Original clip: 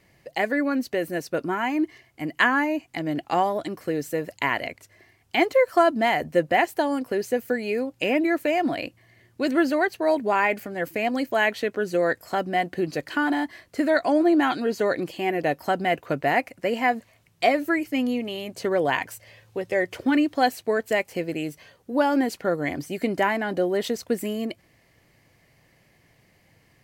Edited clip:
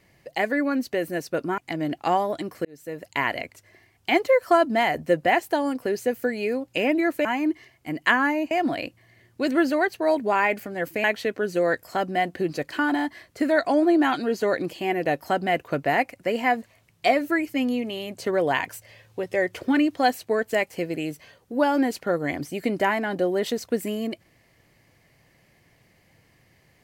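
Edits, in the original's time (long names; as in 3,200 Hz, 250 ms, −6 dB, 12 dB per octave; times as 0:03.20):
0:01.58–0:02.84: move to 0:08.51
0:03.91–0:04.50: fade in
0:11.04–0:11.42: remove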